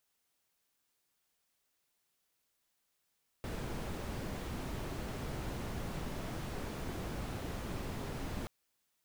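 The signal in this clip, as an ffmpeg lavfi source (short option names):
-f lavfi -i "anoisesrc=c=brown:a=0.0495:d=5.03:r=44100:seed=1"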